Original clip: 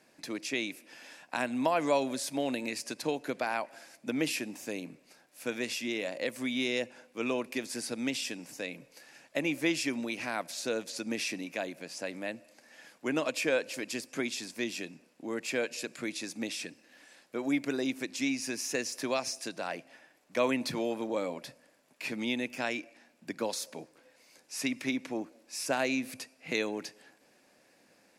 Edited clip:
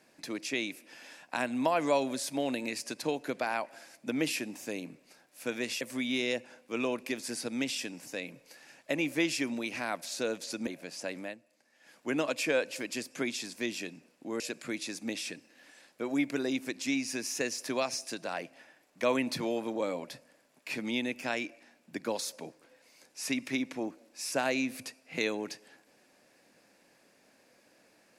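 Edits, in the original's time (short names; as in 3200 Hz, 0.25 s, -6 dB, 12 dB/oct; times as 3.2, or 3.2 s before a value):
5.81–6.27 cut
11.13–11.65 cut
12.19–12.95 dip -11.5 dB, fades 0.16 s
15.38–15.74 cut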